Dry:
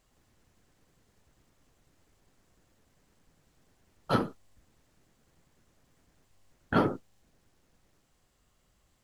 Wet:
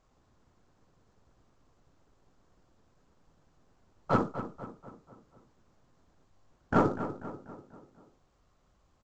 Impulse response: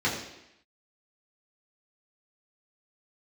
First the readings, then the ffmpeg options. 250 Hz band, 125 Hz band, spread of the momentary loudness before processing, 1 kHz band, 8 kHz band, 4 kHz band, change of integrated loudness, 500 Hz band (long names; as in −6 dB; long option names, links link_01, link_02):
+0.5 dB, +1.0 dB, 12 LU, +2.0 dB, can't be measured, −9.5 dB, −1.5 dB, +1.5 dB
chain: -filter_complex "[0:a]acrusher=bits=4:mode=log:mix=0:aa=0.000001,highshelf=frequency=1700:width_type=q:width=1.5:gain=-10.5,aeval=exprs='0.282*(cos(1*acos(clip(val(0)/0.282,-1,1)))-cos(1*PI/2))+0.02*(cos(4*acos(clip(val(0)/0.282,-1,1)))-cos(4*PI/2))':channel_layout=same,asplit=2[link_01][link_02];[link_02]adelay=244,lowpass=frequency=2600:poles=1,volume=-11dB,asplit=2[link_03][link_04];[link_04]adelay=244,lowpass=frequency=2600:poles=1,volume=0.51,asplit=2[link_05][link_06];[link_06]adelay=244,lowpass=frequency=2600:poles=1,volume=0.51,asplit=2[link_07][link_08];[link_08]adelay=244,lowpass=frequency=2600:poles=1,volume=0.51,asplit=2[link_09][link_10];[link_10]adelay=244,lowpass=frequency=2600:poles=1,volume=0.51[link_11];[link_03][link_05][link_07][link_09][link_11]amix=inputs=5:normalize=0[link_12];[link_01][link_12]amix=inputs=2:normalize=0" -ar 16000 -c:a pcm_mulaw